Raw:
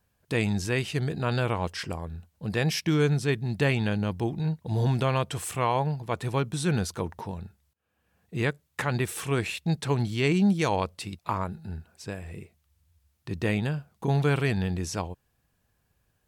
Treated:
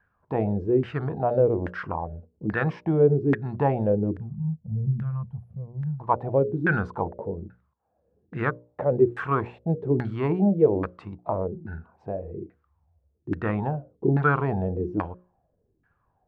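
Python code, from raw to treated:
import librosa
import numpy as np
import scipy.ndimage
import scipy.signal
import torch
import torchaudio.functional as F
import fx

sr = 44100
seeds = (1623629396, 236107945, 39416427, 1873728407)

y = fx.spec_box(x, sr, start_s=4.13, length_s=1.87, low_hz=230.0, high_hz=9700.0, gain_db=-28)
y = fx.hum_notches(y, sr, base_hz=60, count=10)
y = fx.filter_lfo_lowpass(y, sr, shape='saw_down', hz=1.2, low_hz=300.0, high_hz=1700.0, q=6.4)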